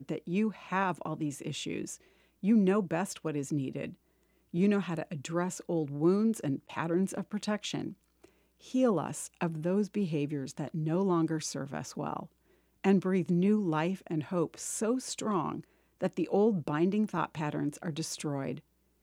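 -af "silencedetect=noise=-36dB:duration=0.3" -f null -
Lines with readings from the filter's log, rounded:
silence_start: 1.94
silence_end: 2.44 | silence_duration: 0.50
silence_start: 3.89
silence_end: 4.54 | silence_duration: 0.65
silence_start: 7.90
silence_end: 8.74 | silence_duration: 0.84
silence_start: 12.23
silence_end: 12.84 | silence_duration: 0.61
silence_start: 15.60
silence_end: 16.01 | silence_duration: 0.41
silence_start: 18.58
silence_end: 19.03 | silence_duration: 0.45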